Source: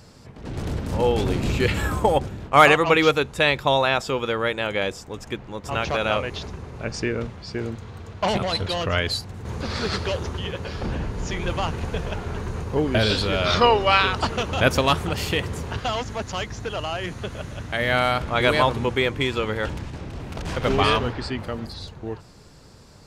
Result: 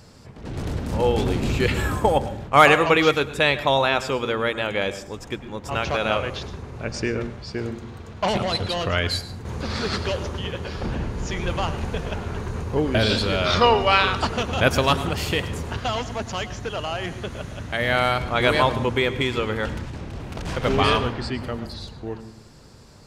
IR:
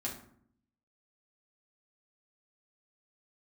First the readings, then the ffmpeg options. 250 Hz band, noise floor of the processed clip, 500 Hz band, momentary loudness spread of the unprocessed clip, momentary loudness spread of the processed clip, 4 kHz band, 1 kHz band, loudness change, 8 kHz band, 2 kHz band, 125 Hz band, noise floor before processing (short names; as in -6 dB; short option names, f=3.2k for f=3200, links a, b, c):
+0.5 dB, -43 dBFS, 0.0 dB, 15 LU, 15 LU, 0.0 dB, 0.0 dB, 0.0 dB, 0.0 dB, 0.0 dB, +0.5 dB, -46 dBFS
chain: -filter_complex "[0:a]asplit=2[a][b];[1:a]atrim=start_sample=2205,adelay=102[c];[b][c]afir=irnorm=-1:irlink=0,volume=-14dB[d];[a][d]amix=inputs=2:normalize=0"